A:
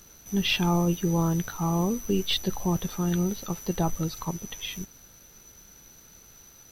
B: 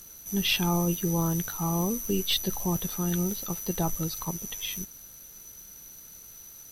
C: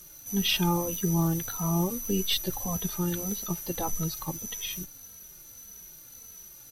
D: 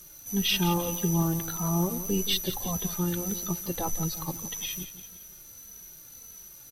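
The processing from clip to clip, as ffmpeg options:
ffmpeg -i in.wav -af "equalizer=frequency=11000:width_type=o:width=1.4:gain=13,volume=-2.5dB" out.wav
ffmpeg -i in.wav -filter_complex "[0:a]asplit=2[link_01][link_02];[link_02]adelay=2.8,afreqshift=-1.7[link_03];[link_01][link_03]amix=inputs=2:normalize=1,volume=2.5dB" out.wav
ffmpeg -i in.wav -af "aecho=1:1:172|344|516|688:0.237|0.102|0.0438|0.0189" out.wav

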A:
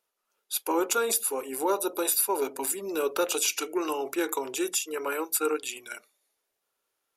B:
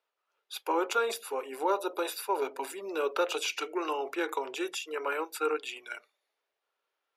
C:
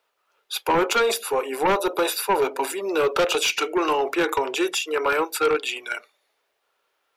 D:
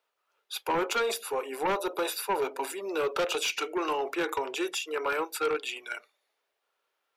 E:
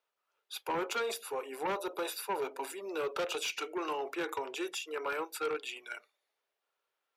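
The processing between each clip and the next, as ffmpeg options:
ffmpeg -i in.wav -filter_complex "[0:a]acrossover=split=360 4300:gain=0.158 1 0.126[link_01][link_02][link_03];[link_01][link_02][link_03]amix=inputs=3:normalize=0" out.wav
ffmpeg -i in.wav -af "aeval=exprs='0.158*sin(PI/2*2.24*val(0)/0.158)':channel_layout=same,volume=1dB" out.wav
ffmpeg -i in.wav -af "lowshelf=frequency=160:gain=-4,volume=-7.5dB" out.wav
ffmpeg -i in.wav -af "highpass=48,volume=-6dB" out.wav

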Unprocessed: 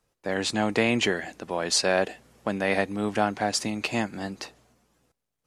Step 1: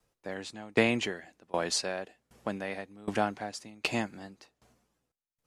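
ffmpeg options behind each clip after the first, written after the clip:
ffmpeg -i in.wav -af "aeval=exprs='val(0)*pow(10,-24*if(lt(mod(1.3*n/s,1),2*abs(1.3)/1000),1-mod(1.3*n/s,1)/(2*abs(1.3)/1000),(mod(1.3*n/s,1)-2*abs(1.3)/1000)/(1-2*abs(1.3)/1000))/20)':channel_layout=same" out.wav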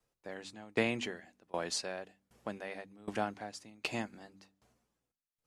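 ffmpeg -i in.wav -af "bandreject=frequency=48.54:width_type=h:width=4,bandreject=frequency=97.08:width_type=h:width=4,bandreject=frequency=145.62:width_type=h:width=4,bandreject=frequency=194.16:width_type=h:width=4,bandreject=frequency=242.7:width_type=h:width=4,bandreject=frequency=291.24:width_type=h:width=4,volume=-6dB" out.wav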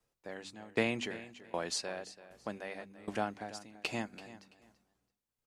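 ffmpeg -i in.wav -af "aecho=1:1:334|668:0.168|0.0369" out.wav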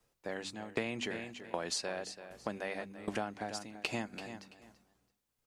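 ffmpeg -i in.wav -af "acompressor=threshold=-38dB:ratio=5,volume=5.5dB" out.wav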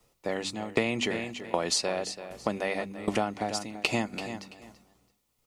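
ffmpeg -i in.wav -af "bandreject=frequency=1600:width=5.7,volume=9dB" out.wav

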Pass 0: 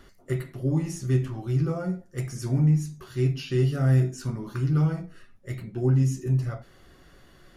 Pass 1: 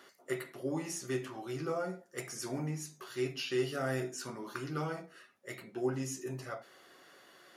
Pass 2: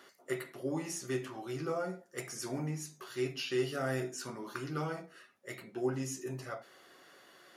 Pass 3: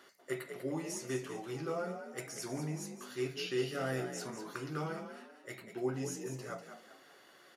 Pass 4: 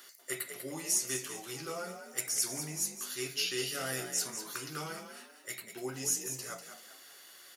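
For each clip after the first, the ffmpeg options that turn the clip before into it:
ffmpeg -i in.wav -af "highpass=440" out.wav
ffmpeg -i in.wav -af anull out.wav
ffmpeg -i in.wav -filter_complex "[0:a]asplit=5[link_01][link_02][link_03][link_04][link_05];[link_02]adelay=194,afreqshift=48,volume=-9dB[link_06];[link_03]adelay=388,afreqshift=96,volume=-17.4dB[link_07];[link_04]adelay=582,afreqshift=144,volume=-25.8dB[link_08];[link_05]adelay=776,afreqshift=192,volume=-34.2dB[link_09];[link_01][link_06][link_07][link_08][link_09]amix=inputs=5:normalize=0,volume=-2dB" out.wav
ffmpeg -i in.wav -af "crystalizer=i=9:c=0,volume=-5.5dB" out.wav

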